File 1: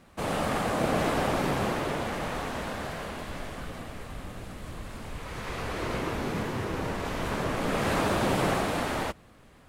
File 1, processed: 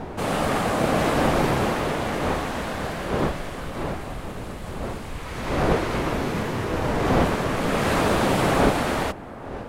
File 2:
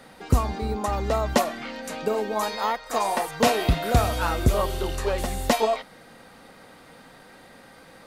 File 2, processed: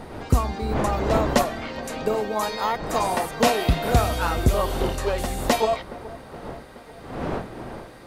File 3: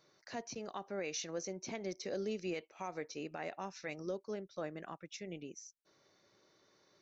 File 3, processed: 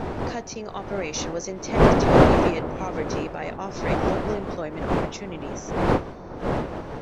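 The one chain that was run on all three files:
wind noise 620 Hz -34 dBFS; feedback echo behind a low-pass 421 ms, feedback 64%, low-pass 1.6 kHz, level -18 dB; normalise loudness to -24 LUFS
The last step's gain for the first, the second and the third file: +5.0 dB, +1.0 dB, +10.0 dB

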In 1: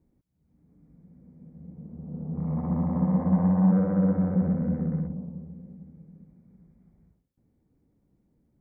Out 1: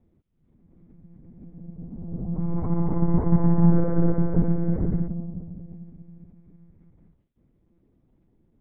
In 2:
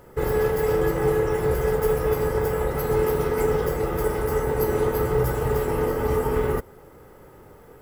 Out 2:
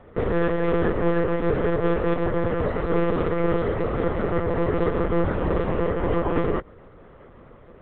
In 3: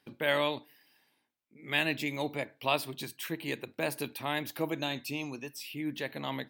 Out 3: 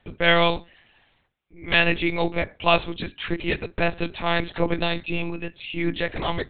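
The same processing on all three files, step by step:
monotone LPC vocoder at 8 kHz 170 Hz; normalise loudness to -24 LUFS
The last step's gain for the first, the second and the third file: +4.5 dB, +0.5 dB, +11.0 dB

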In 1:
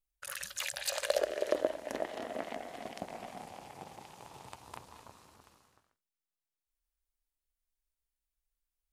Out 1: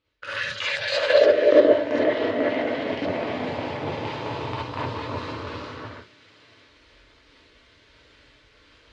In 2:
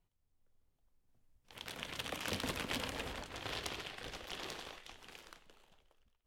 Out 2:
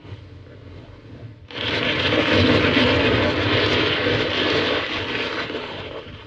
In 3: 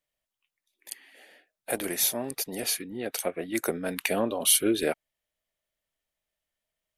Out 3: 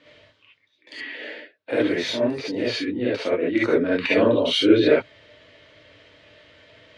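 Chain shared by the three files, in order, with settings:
reverse; upward compressor, threshold -32 dBFS; reverse; cabinet simulation 110–3900 Hz, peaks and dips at 110 Hz +7 dB, 170 Hz -4 dB, 290 Hz +9 dB, 500 Hz +5 dB, 750 Hz -9 dB; gated-style reverb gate 90 ms rising, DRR -7 dB; peak normalisation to -3 dBFS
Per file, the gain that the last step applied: +6.5 dB, +13.0 dB, +0.5 dB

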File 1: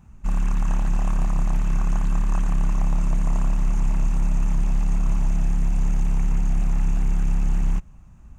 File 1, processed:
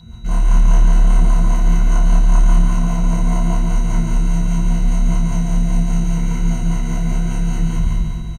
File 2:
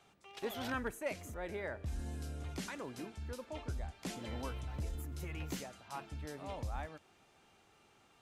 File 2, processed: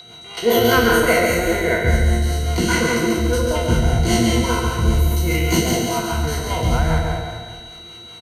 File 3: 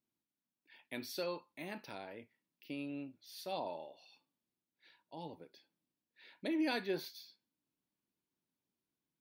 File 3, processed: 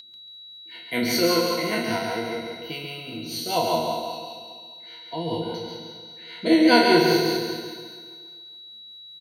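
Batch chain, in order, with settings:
spectral sustain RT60 1.88 s; rippled EQ curve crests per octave 1.9, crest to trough 14 dB; in parallel at +1 dB: compression, threshold -25 dBFS; on the sum: rotary cabinet horn 5 Hz; whistle 3.9 kHz -43 dBFS; comb of notches 280 Hz; on a send: feedback delay 139 ms, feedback 38%, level -5 dB; on the sum: peak normalisation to -3 dBFS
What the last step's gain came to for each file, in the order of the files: +1.5 dB, +13.0 dB, +9.5 dB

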